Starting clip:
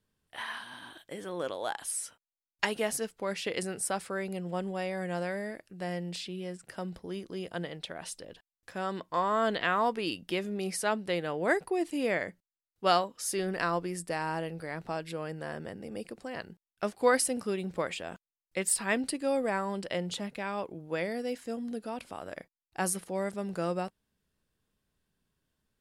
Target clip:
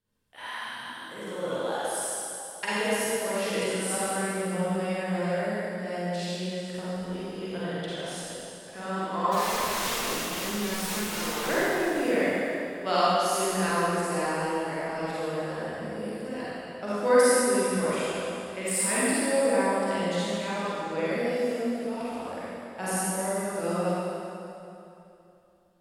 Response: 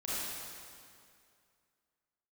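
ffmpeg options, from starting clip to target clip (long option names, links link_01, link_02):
-filter_complex "[0:a]bandreject=frequency=50:width_type=h:width=6,bandreject=frequency=100:width_type=h:width=6,bandreject=frequency=150:width_type=h:width=6,bandreject=frequency=200:width_type=h:width=6,asplit=3[link_01][link_02][link_03];[link_01]afade=type=out:start_time=9.31:duration=0.02[link_04];[link_02]aeval=exprs='(mod(28.2*val(0)+1,2)-1)/28.2':channel_layout=same,afade=type=in:start_time=9.31:duration=0.02,afade=type=out:start_time=11.47:duration=0.02[link_05];[link_03]afade=type=in:start_time=11.47:duration=0.02[link_06];[link_04][link_05][link_06]amix=inputs=3:normalize=0[link_07];[1:a]atrim=start_sample=2205,asetrate=35280,aresample=44100[link_08];[link_07][link_08]afir=irnorm=-1:irlink=0,volume=-1.5dB"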